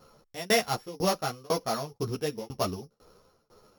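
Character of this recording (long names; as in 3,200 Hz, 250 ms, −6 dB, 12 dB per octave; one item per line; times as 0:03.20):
a buzz of ramps at a fixed pitch in blocks of 8 samples
tremolo saw down 2 Hz, depth 100%
a shimmering, thickened sound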